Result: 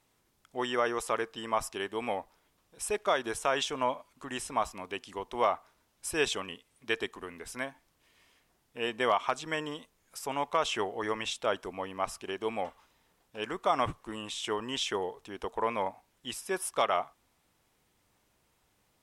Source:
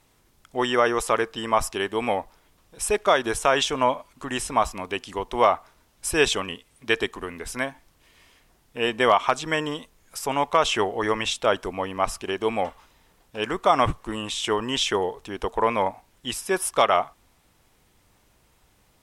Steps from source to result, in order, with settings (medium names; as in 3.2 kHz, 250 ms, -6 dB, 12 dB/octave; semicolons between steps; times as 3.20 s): bass shelf 71 Hz -9.5 dB; trim -8.5 dB